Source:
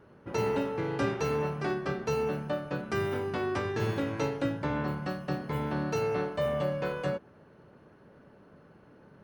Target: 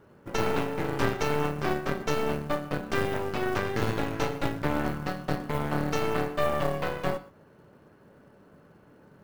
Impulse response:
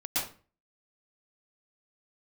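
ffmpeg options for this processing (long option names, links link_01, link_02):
-filter_complex "[0:a]aeval=exprs='0.15*(cos(1*acos(clip(val(0)/0.15,-1,1)))-cos(1*PI/2))+0.0596*(cos(4*acos(clip(val(0)/0.15,-1,1)))-cos(4*PI/2))':channel_layout=same,acrusher=bits=6:mode=log:mix=0:aa=0.000001,asplit=2[link_01][link_02];[1:a]atrim=start_sample=2205,atrim=end_sample=6174[link_03];[link_02][link_03]afir=irnorm=-1:irlink=0,volume=-23.5dB[link_04];[link_01][link_04]amix=inputs=2:normalize=0"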